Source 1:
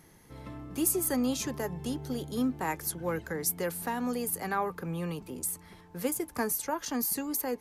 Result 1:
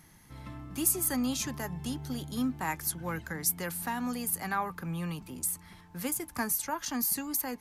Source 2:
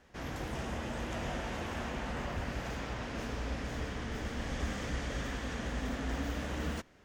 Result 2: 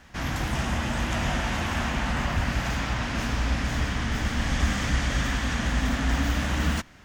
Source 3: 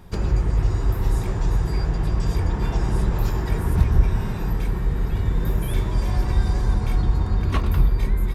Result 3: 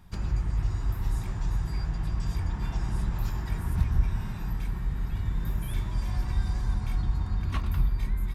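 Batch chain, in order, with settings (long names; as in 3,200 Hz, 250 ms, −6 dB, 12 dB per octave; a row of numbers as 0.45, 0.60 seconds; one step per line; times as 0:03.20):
parametric band 450 Hz −11.5 dB 0.95 octaves
normalise the peak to −12 dBFS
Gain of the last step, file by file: +1.5, +12.5, −7.0 decibels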